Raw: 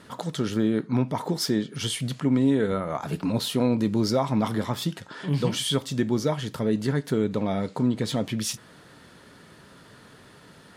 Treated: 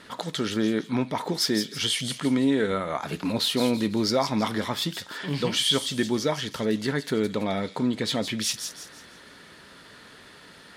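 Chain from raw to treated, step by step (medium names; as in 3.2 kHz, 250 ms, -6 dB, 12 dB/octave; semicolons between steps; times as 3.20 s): ten-band graphic EQ 125 Hz -7 dB, 2 kHz +5 dB, 4 kHz +5 dB; feedback echo behind a high-pass 166 ms, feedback 37%, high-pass 4.4 kHz, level -5 dB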